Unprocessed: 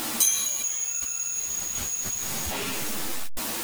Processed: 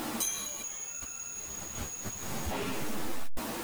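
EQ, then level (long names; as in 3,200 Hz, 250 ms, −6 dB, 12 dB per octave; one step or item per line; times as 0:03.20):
high-shelf EQ 2,000 Hz −12 dB
0.0 dB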